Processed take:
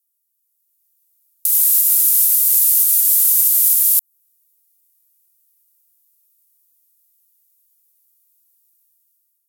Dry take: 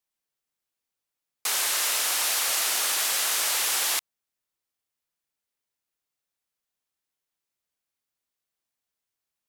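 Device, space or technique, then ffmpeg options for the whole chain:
FM broadcast chain: -filter_complex "[0:a]highpass=41,dynaudnorm=framelen=310:gausssize=5:maxgain=11dB,acrossover=split=2500|7900[link_01][link_02][link_03];[link_01]acompressor=threshold=-38dB:ratio=4[link_04];[link_02]acompressor=threshold=-33dB:ratio=4[link_05];[link_03]acompressor=threshold=-26dB:ratio=4[link_06];[link_04][link_05][link_06]amix=inputs=3:normalize=0,aemphasis=mode=production:type=75fm,alimiter=limit=-2.5dB:level=0:latency=1:release=194,asoftclip=type=hard:threshold=-5.5dB,lowpass=frequency=15000:width=0.5412,lowpass=frequency=15000:width=1.3066,aemphasis=mode=production:type=75fm,volume=-15.5dB"

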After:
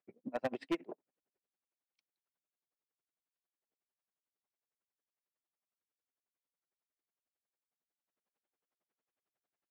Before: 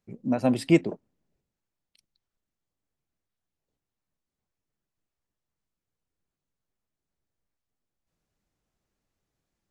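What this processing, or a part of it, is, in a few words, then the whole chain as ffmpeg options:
helicopter radio: -af "highpass=380,lowpass=2600,aeval=exprs='val(0)*pow(10,-31*(0.5-0.5*cos(2*PI*11*n/s))/20)':channel_layout=same,asoftclip=type=hard:threshold=-27.5dB,volume=-1dB"

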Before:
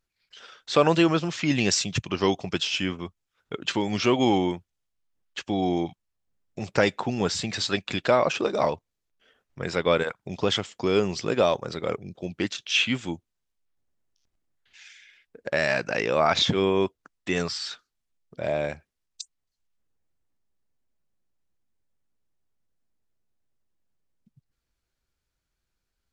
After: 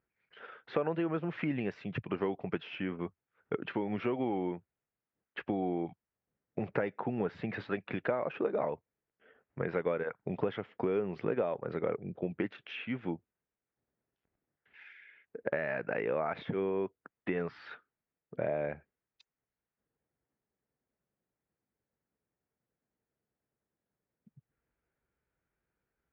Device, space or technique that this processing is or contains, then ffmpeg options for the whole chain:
bass amplifier: -af "acompressor=threshold=-31dB:ratio=6,highpass=78,equalizer=frequency=88:width_type=q:width=4:gain=-7,equalizer=frequency=450:width_type=q:width=4:gain=4,equalizer=frequency=1100:width_type=q:width=4:gain=-3,lowpass=frequency=2100:width=0.5412,lowpass=frequency=2100:width=1.3066,volume=1dB"

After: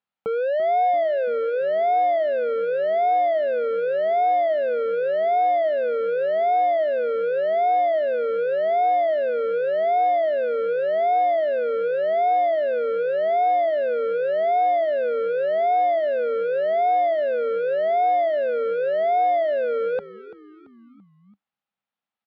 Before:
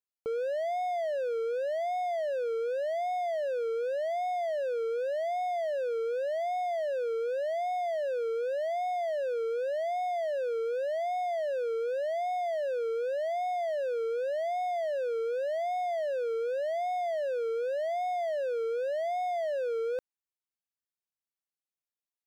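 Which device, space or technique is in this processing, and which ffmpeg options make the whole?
frequency-shifting delay pedal into a guitar cabinet: -filter_complex "[0:a]asplit=5[link_01][link_02][link_03][link_04][link_05];[link_02]adelay=337,afreqshift=-74,volume=-15.5dB[link_06];[link_03]adelay=674,afreqshift=-148,volume=-22.4dB[link_07];[link_04]adelay=1011,afreqshift=-222,volume=-29.4dB[link_08];[link_05]adelay=1348,afreqshift=-296,volume=-36.3dB[link_09];[link_01][link_06][link_07][link_08][link_09]amix=inputs=5:normalize=0,highpass=84,equalizer=frequency=200:width_type=q:width=4:gain=9,equalizer=frequency=360:width_type=q:width=4:gain=-7,equalizer=frequency=810:width_type=q:width=4:gain=7,equalizer=frequency=1300:width_type=q:width=4:gain=5,lowpass=frequency=3600:width=0.5412,lowpass=frequency=3600:width=1.3066,volume=8.5dB"

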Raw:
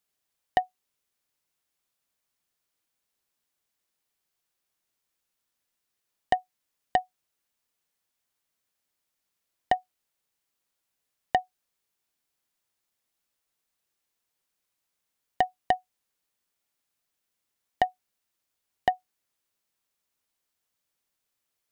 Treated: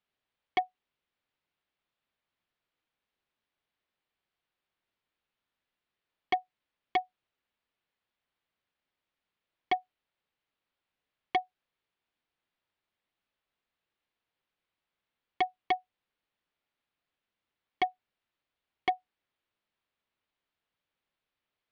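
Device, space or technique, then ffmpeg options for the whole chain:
synthesiser wavefolder: -af "aeval=exprs='0.112*(abs(mod(val(0)/0.112+3,4)-2)-1)':channel_layout=same,lowpass=frequency=3700:width=0.5412,lowpass=frequency=3700:width=1.3066"

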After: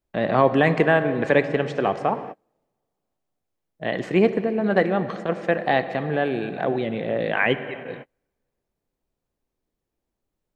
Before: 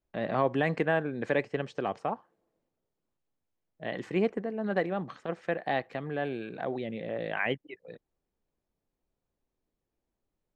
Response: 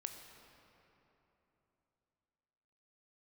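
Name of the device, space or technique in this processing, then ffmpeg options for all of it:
keyed gated reverb: -filter_complex "[0:a]asplit=3[link_01][link_02][link_03];[1:a]atrim=start_sample=2205[link_04];[link_02][link_04]afir=irnorm=-1:irlink=0[link_05];[link_03]apad=whole_len=465362[link_06];[link_05][link_06]sidechaingate=range=-38dB:threshold=-53dB:ratio=16:detection=peak,volume=5dB[link_07];[link_01][link_07]amix=inputs=2:normalize=0,volume=2.5dB"

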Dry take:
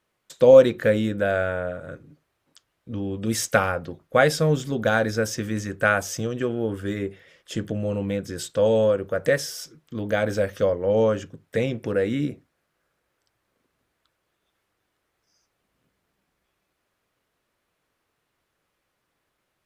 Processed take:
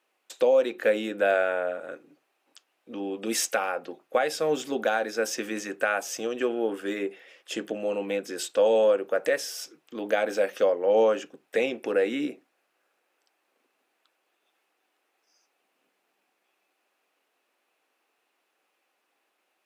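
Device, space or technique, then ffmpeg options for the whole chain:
laptop speaker: -af "highpass=frequency=280:width=0.5412,highpass=frequency=280:width=1.3066,equalizer=frequency=780:width_type=o:width=0.25:gain=7,equalizer=frequency=2600:width_type=o:width=0.27:gain=7.5,alimiter=limit=-13dB:level=0:latency=1:release=420"

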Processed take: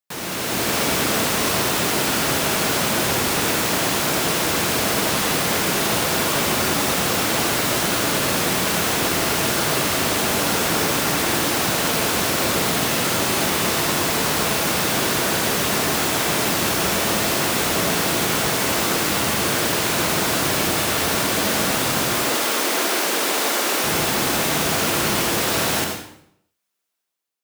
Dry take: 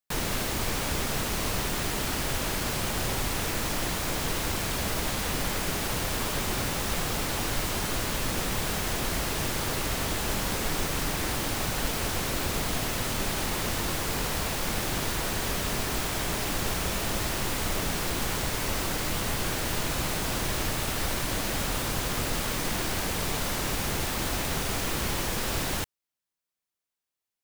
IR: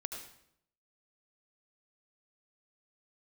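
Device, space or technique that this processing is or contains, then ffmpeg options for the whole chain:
far laptop microphone: -filter_complex "[0:a]asettb=1/sr,asplit=3[link_01][link_02][link_03];[link_01]atrim=end=22.194[link_04];[link_02]atrim=start=22.19:end=23.84,asetpts=PTS-STARTPTS,afade=type=in:duration=0.004:curve=qsin,afade=type=out:start_time=1.646:duration=0.004:curve=qsin,highpass=frequency=270:width=0.5412,highpass=frequency=270:width=1.3066[link_05];[link_03]atrim=start=23.836[link_06];[link_04][link_05]acrossfade=duration=0.004:curve1=hsin:curve2=qsin[link_07];[link_07][link_06]acrossfade=duration=0.004:curve1=qsin:curve2=hsin[link_08];[1:a]atrim=start_sample=2205[link_09];[link_08][link_09]afir=irnorm=-1:irlink=0,highpass=150,dynaudnorm=framelen=110:gausssize=9:maxgain=8dB,volume=3dB"

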